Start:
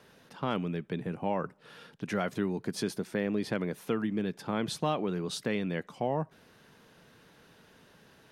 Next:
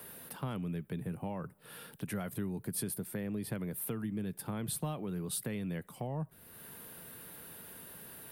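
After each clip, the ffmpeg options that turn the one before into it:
-filter_complex "[0:a]acrossover=split=140[a][b];[b]acompressor=threshold=-56dB:ratio=2[c];[a][c]amix=inputs=2:normalize=0,aexciter=amount=6.5:drive=9.2:freq=8.8k,volume=4.5dB"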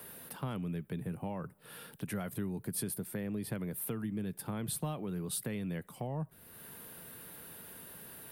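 -af anull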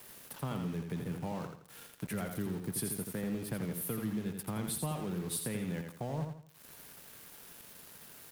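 -filter_complex "[0:a]aeval=exprs='val(0)*gte(abs(val(0)),0.00531)':c=same,asplit=2[a][b];[b]aecho=0:1:84|168|252|336:0.501|0.17|0.0579|0.0197[c];[a][c]amix=inputs=2:normalize=0"

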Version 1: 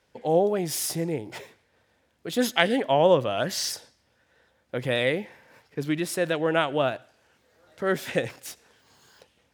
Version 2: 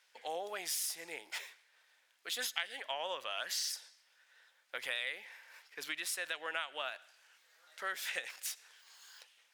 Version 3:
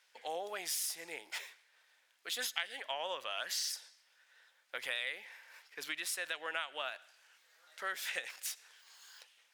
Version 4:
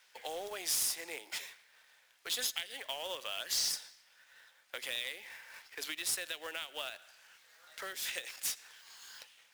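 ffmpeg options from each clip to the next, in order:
-af "highpass=1.5k,acompressor=threshold=-38dB:ratio=4,volume=2dB"
-af anull
-filter_complex "[0:a]highpass=290,acrossover=split=460|3000[a][b][c];[b]acompressor=threshold=-49dB:ratio=10[d];[a][d][c]amix=inputs=3:normalize=0,acrusher=bits=2:mode=log:mix=0:aa=0.000001,volume=4.5dB"

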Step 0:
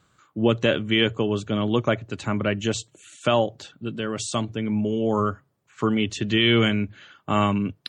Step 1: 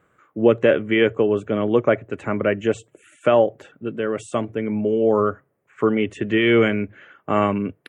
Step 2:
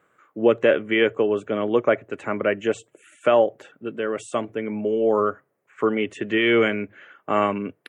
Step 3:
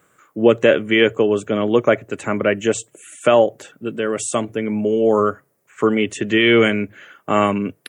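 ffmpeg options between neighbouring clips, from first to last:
-af "firequalizer=gain_entry='entry(110,0);entry(460,12);entry(890,4);entry(2000,8);entry(4200,-16);entry(10000,2)':delay=0.05:min_phase=1,volume=-3.5dB"
-af "highpass=f=330:p=1"
-af "bass=f=250:g=6,treble=f=4k:g=14,volume=3.5dB"

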